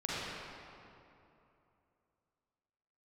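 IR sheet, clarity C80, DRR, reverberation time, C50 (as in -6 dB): -3.5 dB, -8.5 dB, 2.9 s, -6.5 dB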